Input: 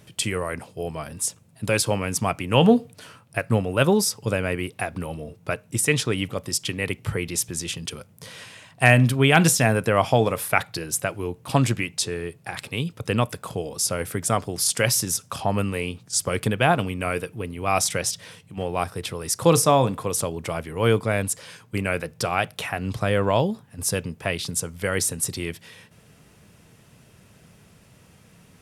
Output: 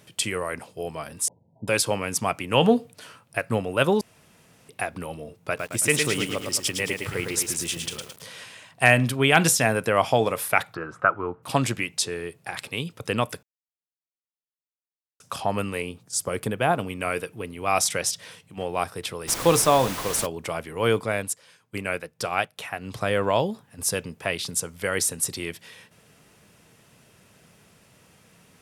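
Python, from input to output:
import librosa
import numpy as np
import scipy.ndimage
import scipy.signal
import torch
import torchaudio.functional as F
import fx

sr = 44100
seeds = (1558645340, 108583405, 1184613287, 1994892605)

y = fx.brickwall_lowpass(x, sr, high_hz=1000.0, at=(1.28, 1.68))
y = fx.echo_crushed(y, sr, ms=109, feedback_pct=55, bits=7, wet_db=-4, at=(5.39, 8.29))
y = fx.lowpass_res(y, sr, hz=1300.0, q=8.1, at=(10.73, 11.42), fade=0.02)
y = fx.peak_eq(y, sr, hz=3200.0, db=-6.5, octaves=2.6, at=(15.82, 16.9))
y = fx.dmg_noise_colour(y, sr, seeds[0], colour='pink', level_db=-31.0, at=(19.27, 20.25), fade=0.02)
y = fx.upward_expand(y, sr, threshold_db=-45.0, expansion=1.5, at=(21.06, 22.93))
y = fx.edit(y, sr, fx.room_tone_fill(start_s=4.01, length_s=0.68),
    fx.silence(start_s=13.43, length_s=1.77), tone=tone)
y = fx.low_shelf(y, sr, hz=190.0, db=-9.5)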